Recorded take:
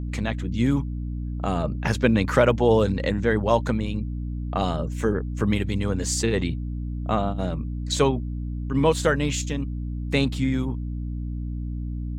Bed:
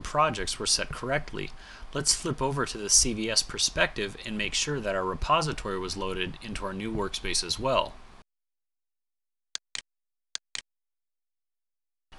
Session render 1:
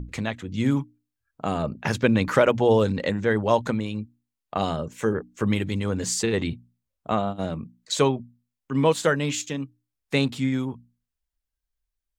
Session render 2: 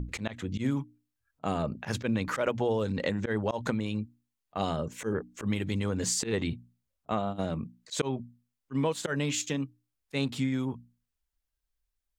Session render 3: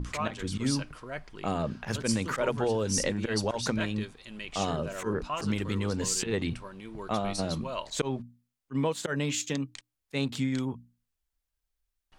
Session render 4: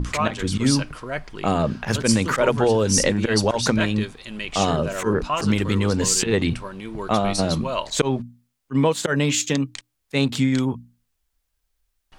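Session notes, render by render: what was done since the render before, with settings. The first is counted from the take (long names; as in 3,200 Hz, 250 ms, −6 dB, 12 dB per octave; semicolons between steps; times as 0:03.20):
mains-hum notches 60/120/180/240/300 Hz
volume swells 115 ms; downward compressor 4 to 1, threshold −26 dBFS, peak gain reduction 10.5 dB
mix in bed −10.5 dB
level +9.5 dB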